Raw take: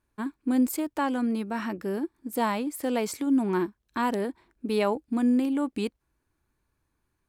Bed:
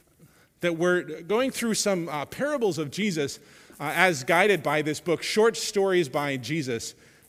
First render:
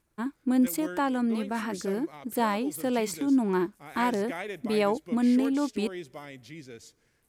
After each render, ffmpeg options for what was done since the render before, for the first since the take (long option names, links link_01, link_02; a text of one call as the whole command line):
ffmpeg -i in.wav -i bed.wav -filter_complex "[1:a]volume=-16dB[link_01];[0:a][link_01]amix=inputs=2:normalize=0" out.wav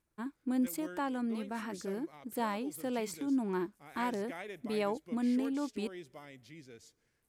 ffmpeg -i in.wav -af "volume=-8dB" out.wav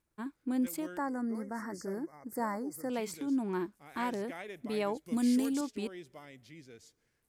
ffmpeg -i in.wav -filter_complex "[0:a]asettb=1/sr,asplit=3[link_01][link_02][link_03];[link_01]atrim=end=0.974[link_04];[link_02]atrim=start=0.97:end=2.9,asetpts=PTS-STARTPTS,afade=type=in:duration=0.004:curve=qsin,afade=type=out:start_time=1.926:duration=0.004:curve=qsin,asuperstop=centerf=3100:order=20:qfactor=1.3[link_05];[link_03]atrim=start=2.896[link_06];[link_04][link_05]acrossfade=duration=0.004:curve1=hsin:curve2=qsin[link_07];[link_07][link_06]acrossfade=duration=0.004:curve1=qsin:curve2=hsin,asettb=1/sr,asplit=3[link_08][link_09][link_10];[link_08]atrim=end=5.064[link_11];[link_09]atrim=start=5.06:end=5.61,asetpts=PTS-STARTPTS,afade=type=in:duration=0.004:curve=qsin,afade=type=out:start_time=0.546:duration=0.004:curve=qsin,bass=frequency=250:gain=6,treble=frequency=4000:gain=15[link_12];[link_10]atrim=start=5.606[link_13];[link_11][link_12]acrossfade=duration=0.004:curve1=hsin:curve2=qsin[link_14];[link_14][link_13]acrossfade=duration=0.004:curve1=qsin:curve2=hsin" out.wav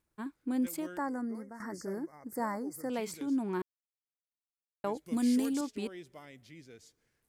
ffmpeg -i in.wav -filter_complex "[0:a]asplit=4[link_01][link_02][link_03][link_04];[link_01]atrim=end=1.6,asetpts=PTS-STARTPTS,afade=type=out:start_time=1.14:duration=0.46:silence=0.281838[link_05];[link_02]atrim=start=1.6:end=3.62,asetpts=PTS-STARTPTS,afade=type=in:duration=0.004:curve=hsin:silence=0.281838,afade=type=out:start_time=2.016:duration=0.004:curve=hsin[link_06];[link_03]atrim=start=3.62:end=4.84,asetpts=PTS-STARTPTS,volume=0[link_07];[link_04]atrim=start=4.84,asetpts=PTS-STARTPTS,afade=type=in:duration=0.004:curve=hsin[link_08];[link_05][link_06][link_07][link_08]concat=n=4:v=0:a=1" out.wav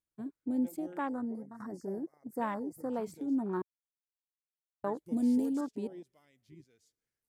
ffmpeg -i in.wav -af "afwtdn=0.01,highshelf=frequency=5000:gain=7" out.wav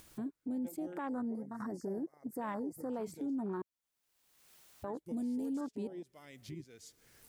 ffmpeg -i in.wav -af "acompressor=mode=upward:threshold=-35dB:ratio=2.5,alimiter=level_in=7.5dB:limit=-24dB:level=0:latency=1:release=17,volume=-7.5dB" out.wav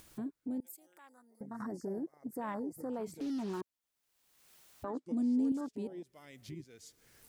ffmpeg -i in.wav -filter_complex "[0:a]asettb=1/sr,asplit=3[link_01][link_02][link_03];[link_01]atrim=end=0.604[link_04];[link_02]atrim=start=0.6:end=1.41,asetpts=PTS-STARTPTS,afade=type=in:duration=0.004:curve=qsin,afade=type=out:start_time=0.806:duration=0.004:curve=qsin,aderivative[link_05];[link_03]atrim=start=1.406[link_06];[link_04][link_05]acrossfade=duration=0.004:curve1=hsin:curve2=qsin[link_07];[link_07][link_06]acrossfade=duration=0.004:curve1=qsin:curve2=hsin,asettb=1/sr,asplit=3[link_08][link_09][link_10];[link_08]atrim=end=3.204[link_11];[link_09]atrim=start=3.2:end=3.61,asetpts=PTS-STARTPTS,afade=type=in:duration=0.004:curve=qsin,afade=type=out:start_time=0.406:duration=0.004:curve=qsin,acrusher=bits=7:mix=0:aa=0.5[link_12];[link_10]atrim=start=3.606[link_13];[link_11][link_12]acrossfade=duration=0.004:curve1=hsin:curve2=qsin[link_14];[link_14][link_13]acrossfade=duration=0.004:curve1=qsin:curve2=hsin,asettb=1/sr,asplit=3[link_15][link_16][link_17];[link_15]atrim=end=4.844[link_18];[link_16]atrim=start=4.84:end=5.52,asetpts=PTS-STARTPTS,afade=type=in:duration=0.004:curve=qsin,afade=type=out:start_time=0.676:duration=0.004:curve=qsin,highpass=190,equalizer=frequency=260:width_type=q:width=4:gain=9,equalizer=frequency=1200:width_type=q:width=4:gain=7,equalizer=frequency=4900:width_type=q:width=4:gain=3,lowpass=frequency=8500:width=0.5412,lowpass=frequency=8500:width=1.3066[link_19];[link_17]atrim=start=5.516[link_20];[link_18][link_19]acrossfade=duration=0.004:curve1=hsin:curve2=qsin[link_21];[link_21][link_20]acrossfade=duration=0.004:curve1=qsin:curve2=hsin" out.wav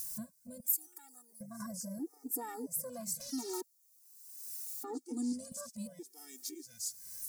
ffmpeg -i in.wav -af "aexciter=amount=10.9:drive=4.9:freq=4600,afftfilt=real='re*gt(sin(2*PI*0.75*pts/sr)*(1-2*mod(floor(b*sr/1024/240),2)),0)':imag='im*gt(sin(2*PI*0.75*pts/sr)*(1-2*mod(floor(b*sr/1024/240),2)),0)':win_size=1024:overlap=0.75" out.wav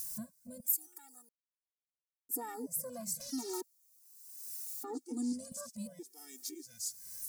ffmpeg -i in.wav -filter_complex "[0:a]asplit=3[link_01][link_02][link_03];[link_01]atrim=end=1.29,asetpts=PTS-STARTPTS,afade=type=out:start_time=1.286:duration=0.004:curve=hsin[link_04];[link_02]atrim=start=1.29:end=2.29,asetpts=PTS-STARTPTS,volume=0[link_05];[link_03]atrim=start=2.29,asetpts=PTS-STARTPTS,afade=type=in:duration=0.004:curve=hsin[link_06];[link_04][link_05][link_06]concat=n=3:v=0:a=1" out.wav